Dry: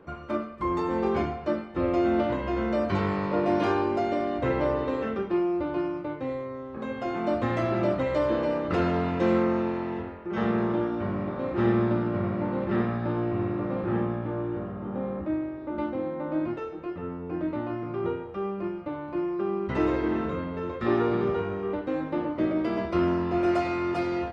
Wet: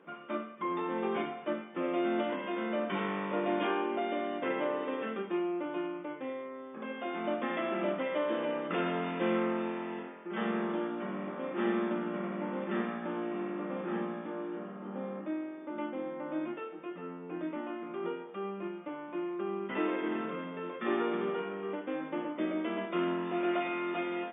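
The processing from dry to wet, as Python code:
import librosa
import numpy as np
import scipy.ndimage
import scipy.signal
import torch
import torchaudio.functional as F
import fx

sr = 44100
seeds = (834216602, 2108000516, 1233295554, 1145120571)

y = fx.brickwall_bandpass(x, sr, low_hz=160.0, high_hz=3600.0)
y = fx.high_shelf(y, sr, hz=2200.0, db=12.0)
y = y * librosa.db_to_amplitude(-7.5)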